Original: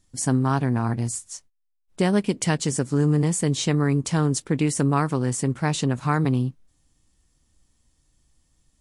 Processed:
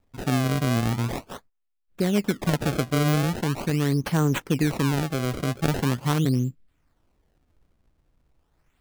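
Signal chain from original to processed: rotary cabinet horn 0.65 Hz; decimation with a swept rate 28×, swing 160% 0.42 Hz

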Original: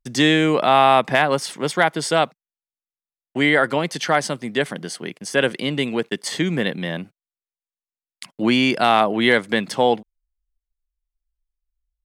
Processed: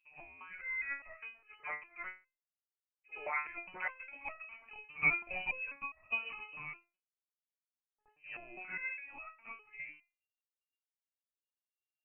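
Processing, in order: Doppler pass-by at 4.92 s, 26 m/s, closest 27 m; reverse echo 72 ms -19.5 dB; frequency inversion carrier 2.8 kHz; resonator arpeggio 4.9 Hz 150–640 Hz; trim -2 dB

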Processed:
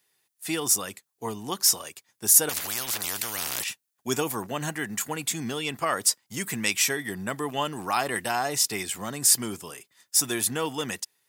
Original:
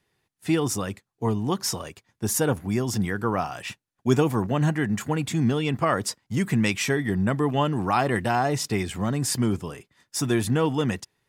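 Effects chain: RIAA curve recording; 2.49–3.64 s: spectrum-flattening compressor 10:1; trim -3 dB

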